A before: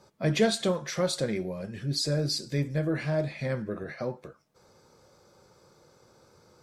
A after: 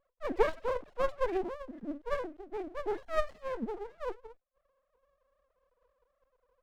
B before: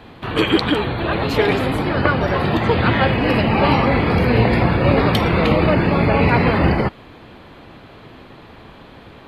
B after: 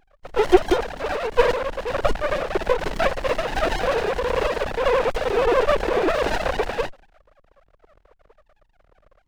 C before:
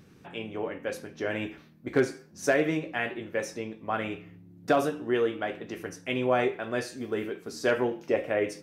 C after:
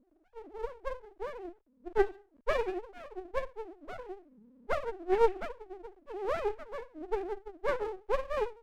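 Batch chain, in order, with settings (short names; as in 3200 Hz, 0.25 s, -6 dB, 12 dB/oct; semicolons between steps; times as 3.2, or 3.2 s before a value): sine-wave speech; low-pass opened by the level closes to 430 Hz, open at -15 dBFS; running maximum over 33 samples; gain -2 dB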